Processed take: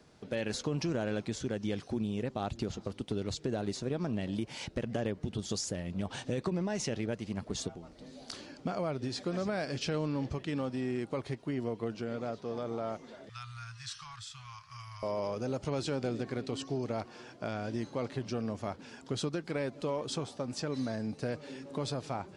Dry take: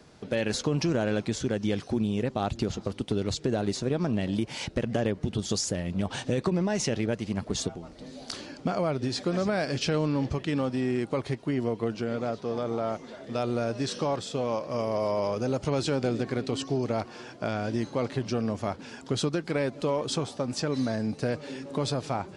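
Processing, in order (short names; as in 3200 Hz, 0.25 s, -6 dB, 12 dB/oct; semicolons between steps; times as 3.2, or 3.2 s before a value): 13.29–15.03 elliptic band-stop 110–1200 Hz, stop band 50 dB; gain -6.5 dB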